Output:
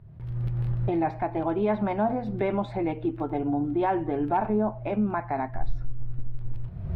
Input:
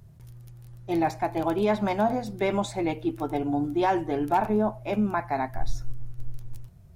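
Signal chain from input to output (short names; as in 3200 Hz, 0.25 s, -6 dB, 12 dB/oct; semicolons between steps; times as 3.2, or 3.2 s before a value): recorder AGC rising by 43 dB/s; air absorption 450 m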